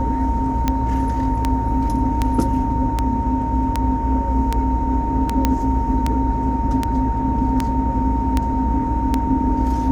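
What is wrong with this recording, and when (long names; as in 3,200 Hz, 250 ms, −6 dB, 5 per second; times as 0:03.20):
scratch tick 78 rpm −5 dBFS
whistle 920 Hz −23 dBFS
0:05.45: click −3 dBFS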